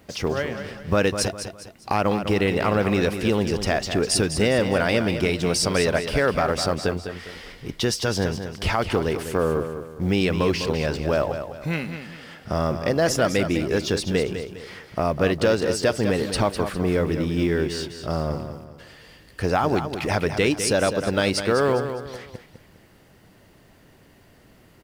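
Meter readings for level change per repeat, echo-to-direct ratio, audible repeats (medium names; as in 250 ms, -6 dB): -8.5 dB, -8.5 dB, 3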